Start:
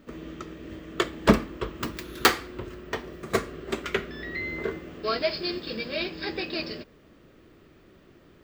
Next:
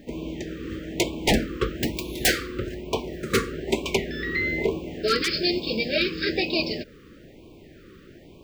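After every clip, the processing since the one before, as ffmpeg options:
-af "aeval=exprs='0.112*(abs(mod(val(0)/0.112+3,4)-2)-1)':c=same,afftfilt=real='re*(1-between(b*sr/1024,750*pow(1600/750,0.5+0.5*sin(2*PI*1.1*pts/sr))/1.41,750*pow(1600/750,0.5+0.5*sin(2*PI*1.1*pts/sr))*1.41))':imag='im*(1-between(b*sr/1024,750*pow(1600/750,0.5+0.5*sin(2*PI*1.1*pts/sr))/1.41,750*pow(1600/750,0.5+0.5*sin(2*PI*1.1*pts/sr))*1.41))':win_size=1024:overlap=0.75,volume=7dB"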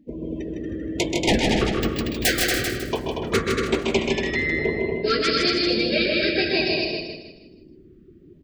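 -filter_complex "[0:a]asplit=2[a][b];[b]aecho=0:1:101|131|234|340:0.1|0.531|0.631|0.2[c];[a][c]amix=inputs=2:normalize=0,afftdn=nr=25:nf=-36,asplit=2[d][e];[e]aecho=0:1:157|314|471|628|785:0.631|0.233|0.0864|0.032|0.0118[f];[d][f]amix=inputs=2:normalize=0"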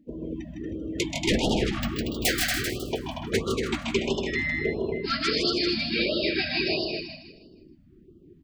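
-af "afftfilt=real='re*(1-between(b*sr/1024,390*pow(2000/390,0.5+0.5*sin(2*PI*1.5*pts/sr))/1.41,390*pow(2000/390,0.5+0.5*sin(2*PI*1.5*pts/sr))*1.41))':imag='im*(1-between(b*sr/1024,390*pow(2000/390,0.5+0.5*sin(2*PI*1.5*pts/sr))/1.41,390*pow(2000/390,0.5+0.5*sin(2*PI*1.5*pts/sr))*1.41))':win_size=1024:overlap=0.75,volume=-3.5dB"

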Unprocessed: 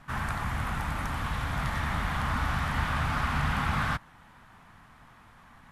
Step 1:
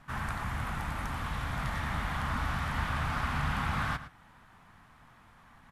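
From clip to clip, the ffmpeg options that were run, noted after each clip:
-filter_complex "[0:a]asplit=2[a][b];[b]adelay=110.8,volume=-13dB,highshelf=f=4k:g=-2.49[c];[a][c]amix=inputs=2:normalize=0,volume=-3.5dB"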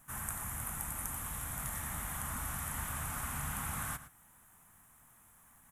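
-af "aexciter=amount=12:drive=8.2:freq=7k,volume=-9dB"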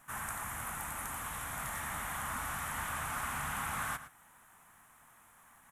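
-filter_complex "[0:a]asplit=2[a][b];[b]highpass=f=720:p=1,volume=12dB,asoftclip=type=tanh:threshold=-19dB[c];[a][c]amix=inputs=2:normalize=0,lowpass=f=3k:p=1,volume=-6dB"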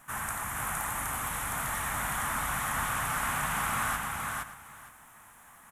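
-af "aecho=1:1:464|928|1392:0.708|0.113|0.0181,volume=5dB"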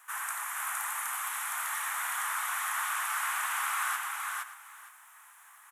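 -af "highpass=f=950:w=0.5412,highpass=f=950:w=1.3066"

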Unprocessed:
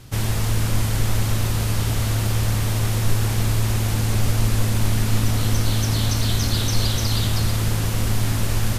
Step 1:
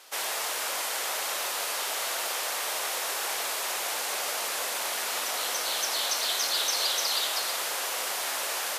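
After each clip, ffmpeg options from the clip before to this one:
-af "highpass=f=550:w=0.5412,highpass=f=550:w=1.3066"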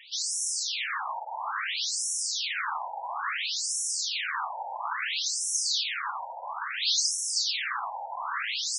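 -af "afreqshift=300,asoftclip=type=hard:threshold=-27dB,afftfilt=real='re*between(b*sr/1024,670*pow(7700/670,0.5+0.5*sin(2*PI*0.59*pts/sr))/1.41,670*pow(7700/670,0.5+0.5*sin(2*PI*0.59*pts/sr))*1.41)':imag='im*between(b*sr/1024,670*pow(7700/670,0.5+0.5*sin(2*PI*0.59*pts/sr))/1.41,670*pow(7700/670,0.5+0.5*sin(2*PI*0.59*pts/sr))*1.41)':win_size=1024:overlap=0.75,volume=7.5dB"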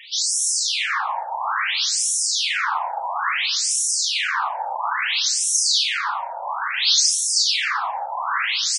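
-filter_complex "[0:a]asplit=2[a][b];[b]adelay=35,volume=-6dB[c];[a][c]amix=inputs=2:normalize=0,aecho=1:1:263:0.0631,volume=8dB"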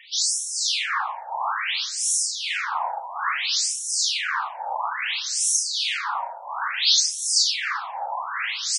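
-filter_complex "[0:a]acrossover=split=2000[a][b];[a]aeval=exprs='val(0)*(1-0.7/2+0.7/2*cos(2*PI*2.1*n/s))':c=same[c];[b]aeval=exprs='val(0)*(1-0.7/2-0.7/2*cos(2*PI*2.1*n/s))':c=same[d];[c][d]amix=inputs=2:normalize=0"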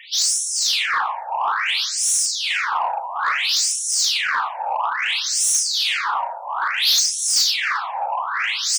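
-af "asoftclip=type=tanh:threshold=-18.5dB,volume=6dB"

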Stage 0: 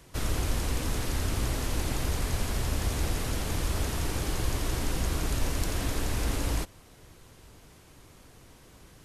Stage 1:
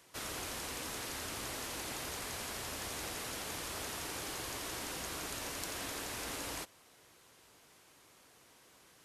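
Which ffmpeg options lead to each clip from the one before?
-af "highpass=f=660:p=1,volume=-4dB"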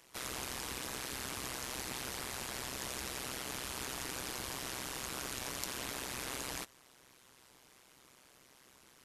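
-af "equalizer=f=580:t=o:w=0.77:g=-2.5,tremolo=f=130:d=1,volume=4.5dB"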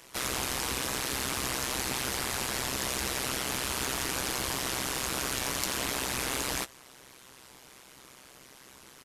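-filter_complex "[0:a]asplit=2[a][b];[b]volume=35dB,asoftclip=hard,volume=-35dB,volume=-4dB[c];[a][c]amix=inputs=2:normalize=0,asplit=2[d][e];[e]adelay=15,volume=-11dB[f];[d][f]amix=inputs=2:normalize=0,volume=5dB"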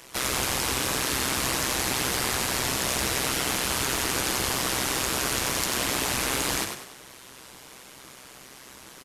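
-filter_complex "[0:a]asplit=2[a][b];[b]alimiter=limit=-22dB:level=0:latency=1:release=168,volume=-2dB[c];[a][c]amix=inputs=2:normalize=0,asplit=6[d][e][f][g][h][i];[e]adelay=98,afreqshift=41,volume=-6dB[j];[f]adelay=196,afreqshift=82,volume=-14.2dB[k];[g]adelay=294,afreqshift=123,volume=-22.4dB[l];[h]adelay=392,afreqshift=164,volume=-30.5dB[m];[i]adelay=490,afreqshift=205,volume=-38.7dB[n];[d][j][k][l][m][n]amix=inputs=6:normalize=0"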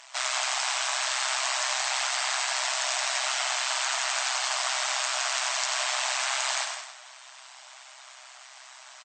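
-af "afftfilt=real='re*between(b*sr/4096,600,8500)':imag='im*between(b*sr/4096,600,8500)':win_size=4096:overlap=0.75,aecho=1:1:164:0.316" -ar 48000 -c:a libopus -b:a 48k

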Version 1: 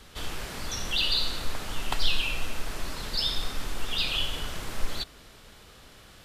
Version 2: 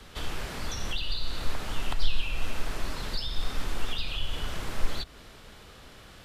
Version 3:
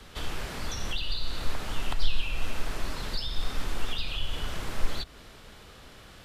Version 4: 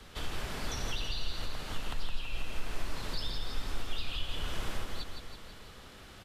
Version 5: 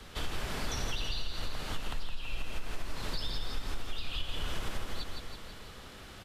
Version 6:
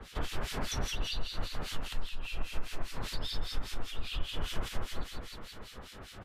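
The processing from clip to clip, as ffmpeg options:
-filter_complex "[0:a]highshelf=f=4.8k:g=-5.5,acrossover=split=120[a][b];[b]acompressor=threshold=-37dB:ratio=5[c];[a][c]amix=inputs=2:normalize=0,volume=2.5dB"
-af anull
-af "alimiter=limit=-21dB:level=0:latency=1:release=335,aecho=1:1:164|328|492|656|820|984|1148|1312:0.501|0.301|0.18|0.108|0.065|0.039|0.0234|0.014,volume=-3dB"
-af "acompressor=threshold=-30dB:ratio=6,volume=2.5dB"
-filter_complex "[0:a]acrossover=split=1800[a][b];[a]aeval=exprs='val(0)*(1-1/2+1/2*cos(2*PI*5*n/s))':c=same[c];[b]aeval=exprs='val(0)*(1-1/2-1/2*cos(2*PI*5*n/s))':c=same[d];[c][d]amix=inputs=2:normalize=0,volume=4.5dB"

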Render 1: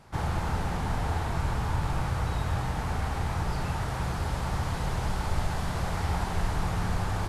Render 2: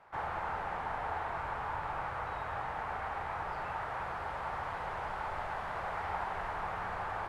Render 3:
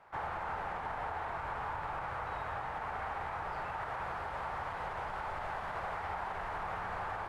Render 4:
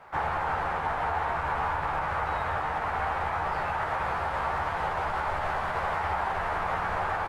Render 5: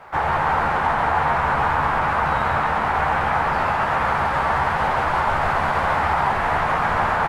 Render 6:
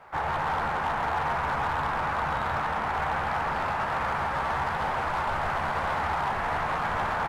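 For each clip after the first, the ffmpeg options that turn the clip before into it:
-filter_complex "[0:a]acrossover=split=510 2400:gain=0.1 1 0.0794[a][b][c];[a][b][c]amix=inputs=3:normalize=0"
-af "alimiter=level_in=5.5dB:limit=-24dB:level=0:latency=1:release=49,volume=-5.5dB"
-filter_complex "[0:a]asplit=2[a][b];[b]adelay=13,volume=-5.5dB[c];[a][c]amix=inputs=2:normalize=0,volume=8.5dB"
-filter_complex "[0:a]asplit=8[a][b][c][d][e][f][g][h];[b]adelay=138,afreqshift=67,volume=-4.5dB[i];[c]adelay=276,afreqshift=134,volume=-10dB[j];[d]adelay=414,afreqshift=201,volume=-15.5dB[k];[e]adelay=552,afreqshift=268,volume=-21dB[l];[f]adelay=690,afreqshift=335,volume=-26.6dB[m];[g]adelay=828,afreqshift=402,volume=-32.1dB[n];[h]adelay=966,afreqshift=469,volume=-37.6dB[o];[a][i][j][k][l][m][n][o]amix=inputs=8:normalize=0,volume=7.5dB"
-af "asoftclip=type=hard:threshold=-15dB,volume=-7.5dB"

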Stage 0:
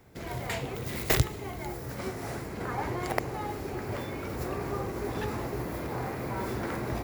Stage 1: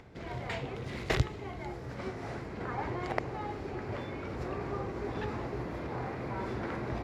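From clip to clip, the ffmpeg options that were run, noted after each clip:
-af "lowpass=4.2k,acompressor=mode=upward:threshold=-44dB:ratio=2.5,volume=-3dB"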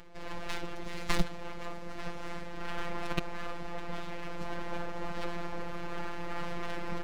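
-af "aeval=exprs='abs(val(0))':c=same,afftfilt=real='hypot(re,im)*cos(PI*b)':imag='0':win_size=1024:overlap=0.75,volume=5dB"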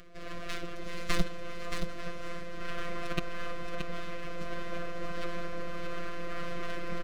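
-filter_complex "[0:a]asuperstop=centerf=910:order=20:qfactor=4.1,asplit=2[a][b];[b]aecho=0:1:625:0.501[c];[a][c]amix=inputs=2:normalize=0"

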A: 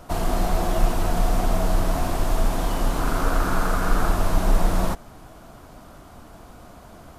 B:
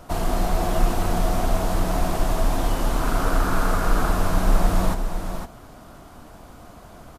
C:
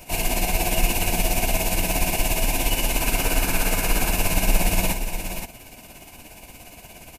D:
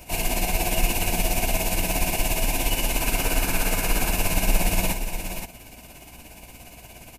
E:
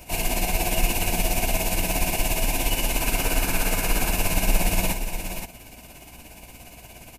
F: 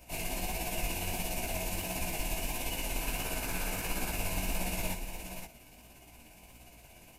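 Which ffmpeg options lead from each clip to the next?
-af "aecho=1:1:508:0.422"
-af "crystalizer=i=3.5:c=0,superequalizer=10b=0.282:12b=3.98,tremolo=f=17:d=0.51"
-af "aeval=exprs='val(0)+0.00316*(sin(2*PI*60*n/s)+sin(2*PI*2*60*n/s)/2+sin(2*PI*3*60*n/s)/3+sin(2*PI*4*60*n/s)/4+sin(2*PI*5*60*n/s)/5)':c=same,volume=-1.5dB"
-af anull
-af "flanger=delay=15.5:depth=7.6:speed=1.5,volume=-7.5dB"

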